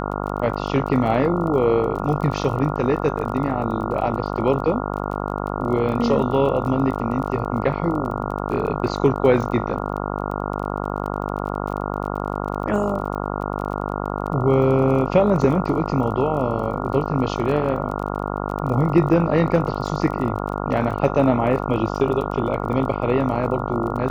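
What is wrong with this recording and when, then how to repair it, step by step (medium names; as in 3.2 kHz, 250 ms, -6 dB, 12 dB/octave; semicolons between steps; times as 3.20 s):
buzz 50 Hz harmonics 28 -26 dBFS
crackle 26 per s -30 dBFS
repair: de-click; de-hum 50 Hz, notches 28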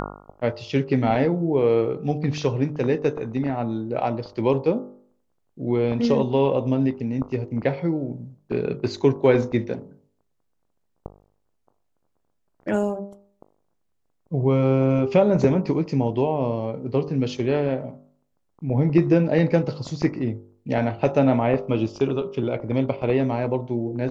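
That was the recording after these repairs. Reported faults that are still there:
nothing left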